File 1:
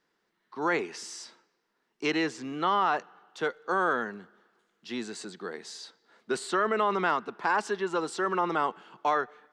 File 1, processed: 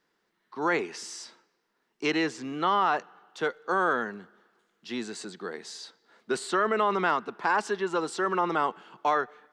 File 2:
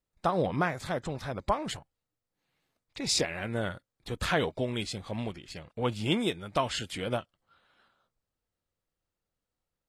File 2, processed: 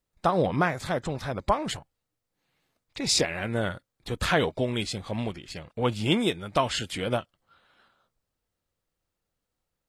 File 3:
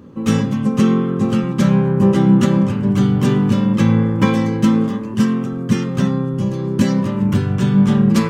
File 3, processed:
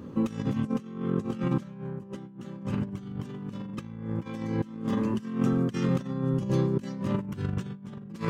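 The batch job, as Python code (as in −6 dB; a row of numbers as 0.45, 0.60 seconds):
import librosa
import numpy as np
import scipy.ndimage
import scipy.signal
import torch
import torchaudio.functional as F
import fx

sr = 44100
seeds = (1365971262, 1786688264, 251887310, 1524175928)

y = fx.over_compress(x, sr, threshold_db=-22.0, ratio=-0.5)
y = y * 10.0 ** (-30 / 20.0) / np.sqrt(np.mean(np.square(y)))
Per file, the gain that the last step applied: +1.0, +4.0, −8.0 decibels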